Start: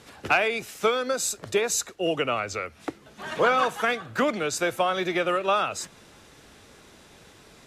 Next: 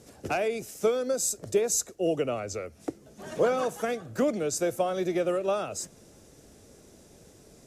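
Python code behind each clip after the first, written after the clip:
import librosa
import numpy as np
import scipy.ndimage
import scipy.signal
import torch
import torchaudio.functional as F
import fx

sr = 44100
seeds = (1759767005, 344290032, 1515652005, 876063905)

y = fx.band_shelf(x, sr, hz=1900.0, db=-12.0, octaves=2.6)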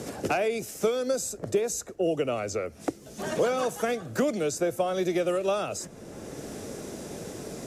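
y = fx.band_squash(x, sr, depth_pct=70)
y = y * 10.0 ** (1.0 / 20.0)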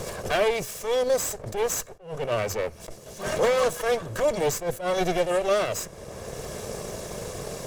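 y = fx.lower_of_two(x, sr, delay_ms=1.8)
y = fx.attack_slew(y, sr, db_per_s=150.0)
y = y * 10.0 ** (5.5 / 20.0)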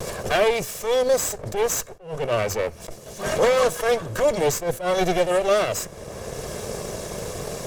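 y = fx.vibrato(x, sr, rate_hz=0.41, depth_cents=18.0)
y = y * 10.0 ** (3.5 / 20.0)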